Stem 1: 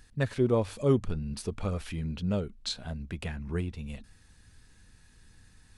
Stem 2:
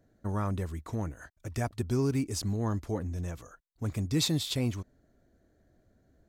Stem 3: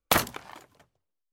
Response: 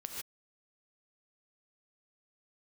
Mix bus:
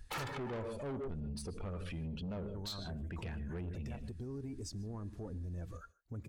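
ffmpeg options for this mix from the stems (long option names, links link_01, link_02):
-filter_complex "[0:a]volume=2.5dB,asplit=2[link_01][link_02];[link_02]volume=-5dB[link_03];[1:a]acompressor=threshold=-37dB:ratio=5,adelay=2300,volume=1dB,asplit=2[link_04][link_05];[link_05]volume=-8dB[link_06];[2:a]aecho=1:1:2.3:1,asplit=2[link_07][link_08];[link_08]highpass=frequency=720:poles=1,volume=24dB,asoftclip=type=tanh:threshold=-5.5dB[link_09];[link_07][link_09]amix=inputs=2:normalize=0,lowpass=frequency=1700:poles=1,volume=-6dB,volume=-8dB,asplit=2[link_10][link_11];[link_11]volume=-9.5dB[link_12];[link_01][link_04]amix=inputs=2:normalize=0,acompressor=threshold=-31dB:ratio=2,volume=0dB[link_13];[3:a]atrim=start_sample=2205[link_14];[link_03][link_06][link_12]amix=inputs=3:normalize=0[link_15];[link_15][link_14]afir=irnorm=-1:irlink=0[link_16];[link_10][link_13][link_16]amix=inputs=3:normalize=0,afftdn=noise_reduction=13:noise_floor=-42,asoftclip=type=tanh:threshold=-27.5dB,alimiter=level_in=13dB:limit=-24dB:level=0:latency=1:release=145,volume=-13dB"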